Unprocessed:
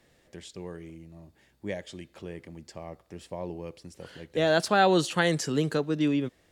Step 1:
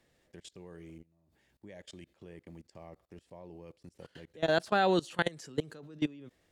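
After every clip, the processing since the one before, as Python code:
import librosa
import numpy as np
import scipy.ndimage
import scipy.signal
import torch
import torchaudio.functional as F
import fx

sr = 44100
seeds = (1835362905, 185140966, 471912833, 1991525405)

y = fx.level_steps(x, sr, step_db=23)
y = y * 10.0 ** (-2.5 / 20.0)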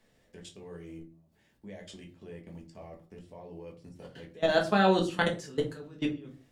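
y = fx.room_shoebox(x, sr, seeds[0], volume_m3=170.0, walls='furnished', distance_m=1.5)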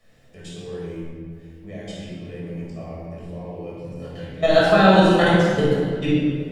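y = fx.room_shoebox(x, sr, seeds[1], volume_m3=3200.0, walls='mixed', distance_m=6.2)
y = y * 10.0 ** (2.0 / 20.0)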